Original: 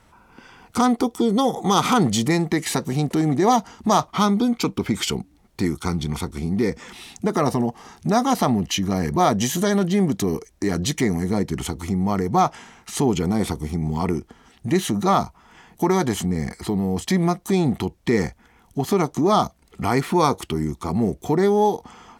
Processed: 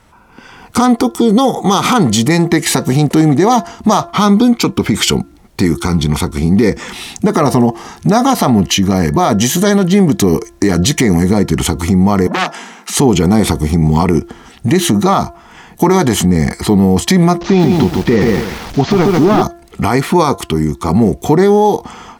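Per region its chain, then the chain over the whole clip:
12.27–12.99 steep high-pass 170 Hz 96 dB/oct + de-esser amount 30% + core saturation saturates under 3000 Hz
17.41–19.42 delta modulation 32 kbps, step -34.5 dBFS + lo-fi delay 0.138 s, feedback 35%, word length 7-bit, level -4 dB
whole clip: de-hum 343.1 Hz, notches 5; AGC gain up to 10 dB; limiter -8 dBFS; gain +6.5 dB

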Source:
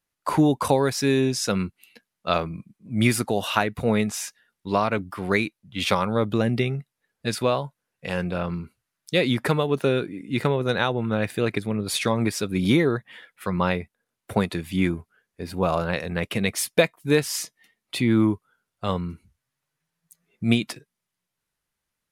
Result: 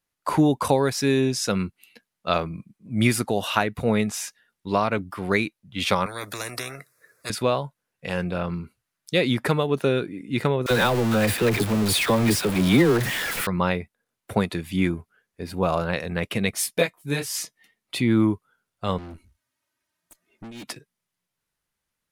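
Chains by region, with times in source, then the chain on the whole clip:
6.06–7.3 HPF 110 Hz 24 dB/oct + fixed phaser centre 830 Hz, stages 6 + spectral compressor 4:1
10.66–13.47 zero-crossing step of -22 dBFS + dynamic EQ 6300 Hz, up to -5 dB, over -40 dBFS, Q 2.8 + dispersion lows, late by 45 ms, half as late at 660 Hz
16.51–17.36 high shelf 5300 Hz +5.5 dB + detuned doubles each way 21 cents
18.98–20.64 comb 3.2 ms, depth 94% + negative-ratio compressor -23 dBFS, ratio -0.5 + tube stage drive 37 dB, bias 0.8
whole clip: dry

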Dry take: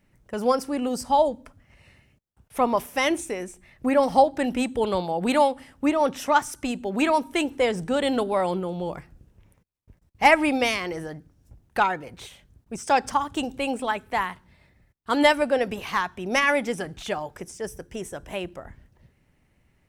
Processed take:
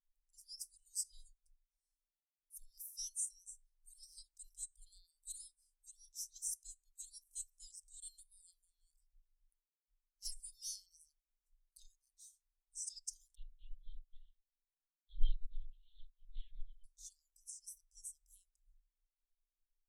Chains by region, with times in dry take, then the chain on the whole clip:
13.35–16.84 chorus 2.2 Hz, delay 20 ms, depth 3.6 ms + tilt +4 dB/oct + LPC vocoder at 8 kHz whisper
whole clip: inverse Chebyshev band-stop 100–1400 Hz, stop band 70 dB; bell 2400 Hz -14 dB 0.55 oct; spectral expander 1.5:1; gain +6 dB

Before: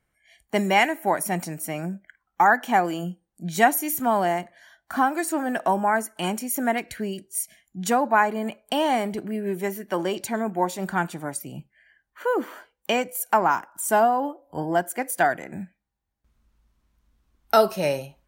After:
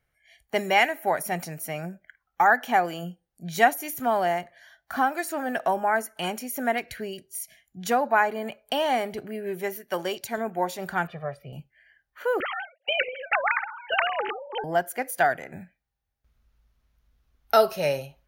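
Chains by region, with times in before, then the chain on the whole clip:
9.76–10.38 high shelf 4000 Hz +8 dB + upward expander, over -37 dBFS
11.07–11.53 air absorption 410 m + comb 1.7 ms, depth 91%
12.4–14.64 sine-wave speech + spectral compressor 4:1
whole clip: de-esser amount 40%; thirty-one-band EQ 200 Hz -10 dB, 315 Hz -10 dB, 1000 Hz -6 dB, 8000 Hz -10 dB

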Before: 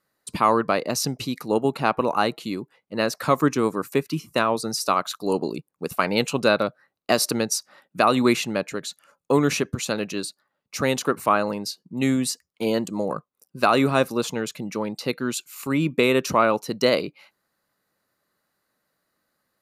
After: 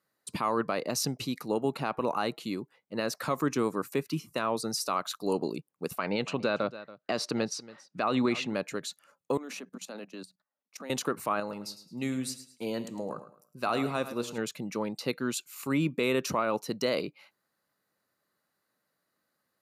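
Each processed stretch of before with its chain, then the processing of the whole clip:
5.98–8.54 LPF 4400 Hz + echo 0.28 s -20 dB
9.37–10.9 rippled Chebyshev high-pass 180 Hz, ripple 6 dB + level quantiser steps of 18 dB
11.4–14.38 resonator 120 Hz, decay 0.61 s, mix 50% + feedback echo 0.107 s, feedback 29%, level -12.5 dB
whole clip: HPF 83 Hz; limiter -12.5 dBFS; gain -5 dB

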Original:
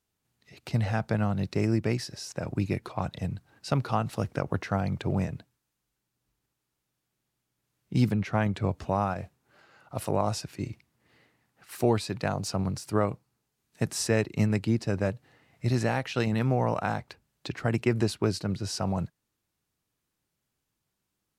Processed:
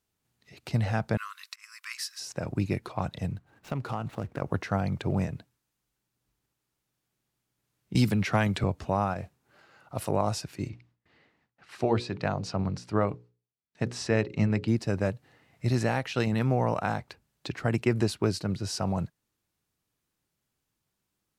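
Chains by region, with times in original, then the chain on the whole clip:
1.17–2.2 high shelf 8600 Hz +11.5 dB + auto swell 0.258 s + brick-wall FIR high-pass 1000 Hz
3.32–4.42 median filter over 9 samples + compressor 3:1, threshold -28 dBFS + Doppler distortion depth 0.14 ms
7.95–8.64 high shelf 2300 Hz +9 dB + notch 6400 Hz, Q 23 + three-band squash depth 70%
10.69–14.68 LPF 4600 Hz + gate with hold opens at -60 dBFS, closes at -65 dBFS + notches 60/120/180/240/300/360/420/480/540 Hz
whole clip: dry

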